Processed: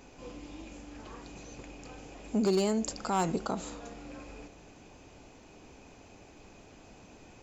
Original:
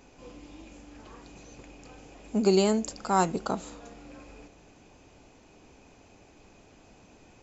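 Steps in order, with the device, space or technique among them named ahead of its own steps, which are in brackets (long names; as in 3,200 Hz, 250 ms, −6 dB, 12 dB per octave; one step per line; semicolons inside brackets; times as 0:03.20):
clipper into limiter (hard clipping −17 dBFS, distortion −18 dB; brickwall limiter −23.5 dBFS, peak gain reduction 6.5 dB)
level +2 dB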